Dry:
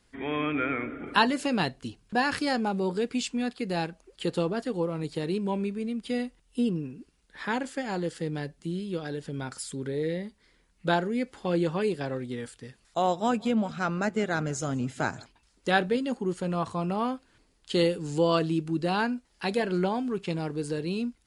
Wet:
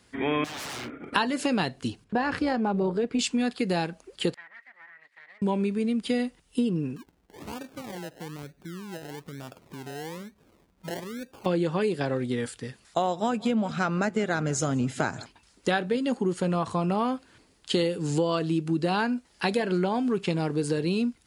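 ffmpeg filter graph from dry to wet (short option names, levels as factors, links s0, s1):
-filter_complex "[0:a]asettb=1/sr,asplit=3[s0][s1][s2];[s0]atrim=end=0.444[s3];[s1]atrim=start=0.44:end=1.13,asetpts=PTS-STARTPTS,afade=t=in:d=0.004:c=qsin,afade=t=out:st=0.686:d=0.004:c=qsin,agate=range=0.0224:threshold=0.0251:ratio=3:release=100:detection=peak,aeval=exprs='0.0188*(abs(mod(val(0)/0.0188+3,4)-2)-1)':c=same,acompressor=threshold=0.00794:ratio=3:attack=3.2:release=140:knee=1:detection=peak[s4];[s2]atrim=start=1.126[s5];[s3][s4]acrossfade=d=0.004:c1=hsin:c2=qsin[s6];[s6][s5]acrossfade=d=0.004:c1=qsin:c2=hsin,asettb=1/sr,asplit=3[s7][s8][s9];[s7]atrim=end=2.044[s10];[s8]atrim=start=2.04:end=3.19,asetpts=PTS-STARTPTS,afade=t=in:d=0.004:c=qsin,afade=t=out:st=1.146:d=0.004:c=qsin,lowpass=f=1400:p=1,tremolo=f=220:d=0.4[s11];[s9]atrim=start=3.186[s12];[s10][s11]acrossfade=d=0.004:c1=hsin:c2=qsin[s13];[s13][s12]acrossfade=d=0.004:c1=qsin:c2=hsin,asettb=1/sr,asplit=3[s14][s15][s16];[s14]atrim=end=4.344[s17];[s15]atrim=start=4.34:end=5.42,asetpts=PTS-STARTPTS,afade=t=in:d=0.004:c=qsin,afade=t=out:st=1.076:d=0.004:c=qsin,aeval=exprs='abs(val(0))':c=same,bandpass=f=1900:t=q:w=19[s18];[s16]atrim=start=5.416[s19];[s17][s18]acrossfade=d=0.004:c1=hsin:c2=qsin[s20];[s20][s19]acrossfade=d=0.004:c1=qsin:c2=hsin,asettb=1/sr,asplit=3[s21][s22][s23];[s21]atrim=end=6.964[s24];[s22]atrim=start=6.96:end=11.46,asetpts=PTS-STARTPTS,afade=t=in:d=0.004:c=qsin,afade=t=out:st=4.496:d=0.004:c=qsin,lowpass=f=2100:w=0.5412,lowpass=f=2100:w=1.3066,acompressor=threshold=0.002:ratio=2:attack=3.2:release=140:knee=1:detection=peak,acrusher=samples=30:mix=1:aa=0.000001:lfo=1:lforange=18:lforate=1.1[s25];[s23]atrim=start=11.456[s26];[s24][s25]acrossfade=d=0.004:c1=hsin:c2=qsin[s27];[s27][s26]acrossfade=d=0.004:c1=qsin:c2=hsin,highpass=72,acompressor=threshold=0.0355:ratio=6,volume=2.24"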